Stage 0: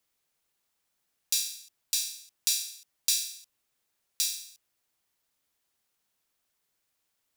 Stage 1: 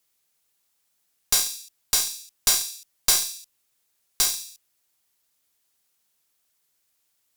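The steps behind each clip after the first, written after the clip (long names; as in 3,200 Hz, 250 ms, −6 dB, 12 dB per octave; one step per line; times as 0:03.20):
high-shelf EQ 3,800 Hz +7.5 dB
tube saturation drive 13 dB, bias 0.75
level +5.5 dB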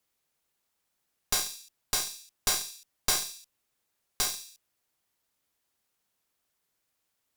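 high-shelf EQ 2,700 Hz −9 dB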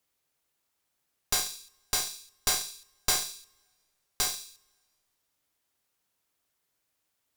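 convolution reverb, pre-delay 3 ms, DRR 12 dB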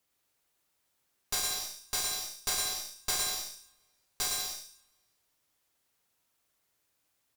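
brickwall limiter −17.5 dBFS, peak gain reduction 8 dB
bouncing-ball delay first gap 110 ms, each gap 0.7×, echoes 5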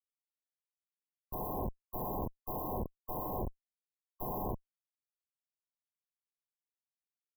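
comparator with hysteresis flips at −32.5 dBFS
linear-phase brick-wall band-stop 1,100–12,000 Hz
level +5 dB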